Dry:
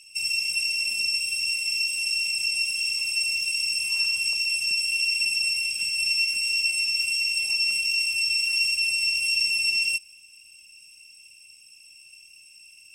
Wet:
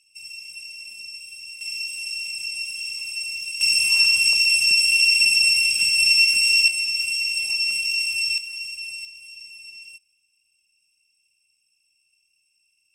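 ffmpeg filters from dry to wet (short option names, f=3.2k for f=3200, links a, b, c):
-af "asetnsamples=n=441:p=0,asendcmd='1.61 volume volume -4dB;3.61 volume volume 7.5dB;6.68 volume volume 1dB;8.38 volume volume -9dB;9.05 volume volume -18dB',volume=-12dB"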